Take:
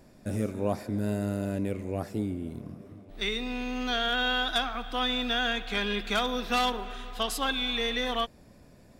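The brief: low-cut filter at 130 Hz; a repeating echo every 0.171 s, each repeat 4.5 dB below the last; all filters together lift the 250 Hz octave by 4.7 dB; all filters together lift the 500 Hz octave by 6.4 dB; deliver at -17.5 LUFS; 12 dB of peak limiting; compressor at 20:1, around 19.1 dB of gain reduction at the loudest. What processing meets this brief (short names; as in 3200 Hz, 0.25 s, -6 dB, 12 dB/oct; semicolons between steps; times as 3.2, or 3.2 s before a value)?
HPF 130 Hz; bell 250 Hz +4.5 dB; bell 500 Hz +6.5 dB; compressor 20:1, threshold -38 dBFS; limiter -38 dBFS; feedback echo 0.171 s, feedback 60%, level -4.5 dB; gain +27.5 dB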